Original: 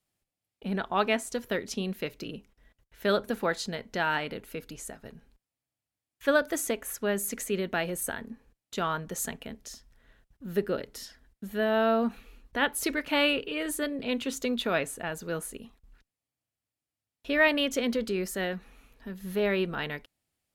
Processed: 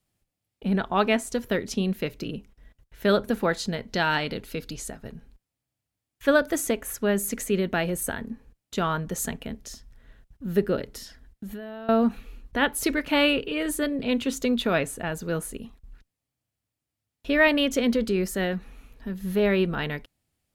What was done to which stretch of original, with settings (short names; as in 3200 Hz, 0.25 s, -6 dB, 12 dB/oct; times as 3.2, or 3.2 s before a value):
3.88–4.9 bell 4400 Hz +8.5 dB 0.96 oct
10.97–11.89 compressor 10:1, threshold -39 dBFS
whole clip: low shelf 250 Hz +8 dB; gain +2.5 dB